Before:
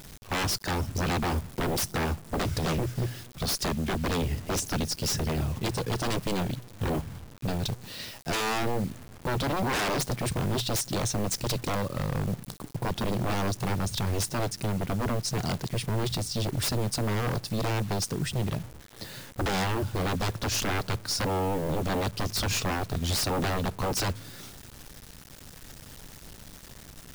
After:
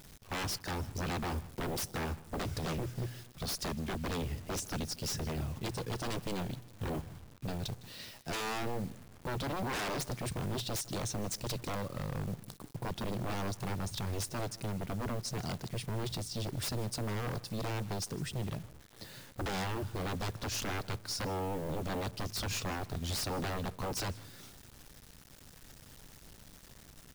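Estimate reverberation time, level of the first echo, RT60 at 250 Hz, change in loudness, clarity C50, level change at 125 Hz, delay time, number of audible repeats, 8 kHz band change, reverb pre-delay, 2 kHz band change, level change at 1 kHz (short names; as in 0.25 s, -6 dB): none, -21.0 dB, none, -8.0 dB, none, -8.0 dB, 0.157 s, 1, -8.0 dB, none, -8.0 dB, -8.0 dB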